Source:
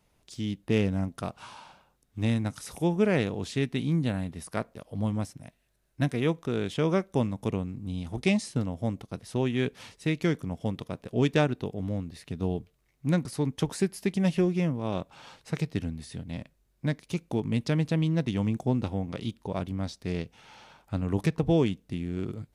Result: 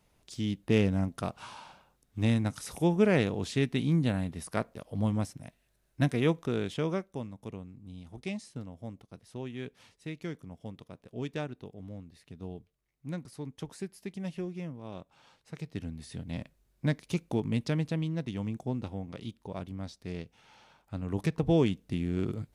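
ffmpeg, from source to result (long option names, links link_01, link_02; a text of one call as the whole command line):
ffmpeg -i in.wav -af "volume=20.5dB,afade=type=out:start_time=6.36:duration=0.83:silence=0.251189,afade=type=in:start_time=15.56:duration=0.84:silence=0.251189,afade=type=out:start_time=17.14:duration=0.98:silence=0.446684,afade=type=in:start_time=20.95:duration=1.09:silence=0.375837" out.wav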